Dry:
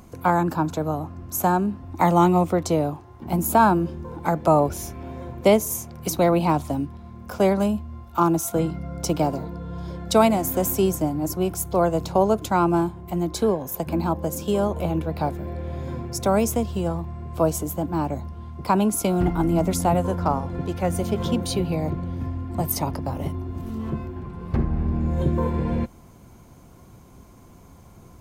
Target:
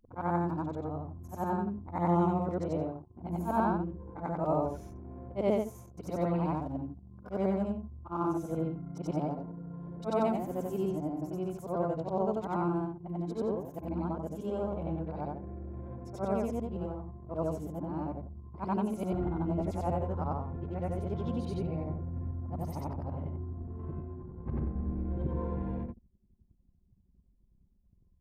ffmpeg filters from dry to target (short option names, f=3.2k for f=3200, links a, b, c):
-af "afftfilt=real='re':imag='-im':win_size=8192:overlap=0.75,anlmdn=0.251,lowpass=f=1k:p=1,volume=-5.5dB"